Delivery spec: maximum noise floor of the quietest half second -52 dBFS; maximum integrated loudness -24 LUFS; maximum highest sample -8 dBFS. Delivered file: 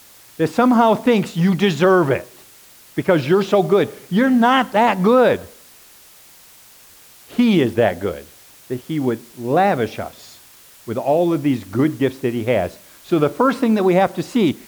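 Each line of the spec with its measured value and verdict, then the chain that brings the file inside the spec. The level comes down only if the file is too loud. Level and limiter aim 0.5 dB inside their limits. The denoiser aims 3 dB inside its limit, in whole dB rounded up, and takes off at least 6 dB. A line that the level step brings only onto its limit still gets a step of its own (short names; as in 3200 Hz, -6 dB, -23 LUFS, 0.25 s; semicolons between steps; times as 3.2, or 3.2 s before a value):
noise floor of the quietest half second -46 dBFS: fail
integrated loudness -17.5 LUFS: fail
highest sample -3.5 dBFS: fail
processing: gain -7 dB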